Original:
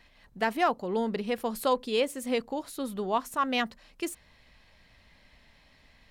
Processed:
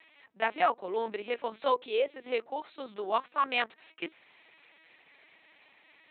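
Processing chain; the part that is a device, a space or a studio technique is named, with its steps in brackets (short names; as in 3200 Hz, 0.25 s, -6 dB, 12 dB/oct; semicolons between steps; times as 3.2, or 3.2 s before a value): talking toy (LPC vocoder at 8 kHz pitch kept; HPF 410 Hz 12 dB/oct; bell 2400 Hz +5.5 dB 0.34 oct)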